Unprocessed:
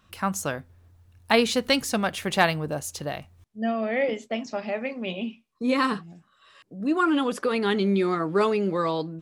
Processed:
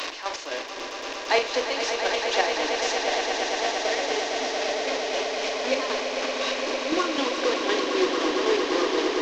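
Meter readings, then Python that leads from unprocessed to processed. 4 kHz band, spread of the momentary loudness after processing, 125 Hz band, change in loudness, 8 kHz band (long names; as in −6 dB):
+5.0 dB, 8 LU, below −20 dB, +0.5 dB, +3.5 dB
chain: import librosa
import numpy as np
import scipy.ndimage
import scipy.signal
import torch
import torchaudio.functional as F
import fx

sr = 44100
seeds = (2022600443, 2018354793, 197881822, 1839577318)

y = fx.delta_mod(x, sr, bps=32000, step_db=-22.0)
y = scipy.signal.sosfilt(scipy.signal.butter(12, 290.0, 'highpass', fs=sr, output='sos'), y)
y = fx.peak_eq(y, sr, hz=1300.0, db=-7.5, octaves=0.31)
y = fx.dmg_noise_colour(y, sr, seeds[0], colour='brown', level_db=-60.0)
y = fx.chopper(y, sr, hz=3.9, depth_pct=65, duty_pct=40)
y = fx.doubler(y, sr, ms=43.0, db=-8.5)
y = fx.echo_swell(y, sr, ms=114, loudest=8, wet_db=-9.0)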